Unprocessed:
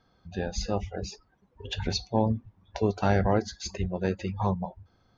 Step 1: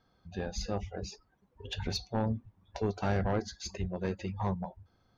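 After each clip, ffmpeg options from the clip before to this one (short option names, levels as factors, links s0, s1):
-af "aeval=exprs='(tanh(7.94*val(0)+0.15)-tanh(0.15))/7.94':c=same,volume=0.631"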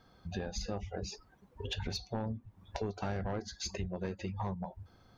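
-af "acompressor=threshold=0.00631:ratio=4,volume=2.37"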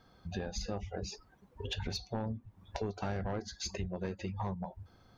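-af anull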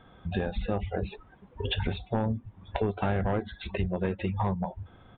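-af "aresample=8000,aresample=44100,volume=2.66"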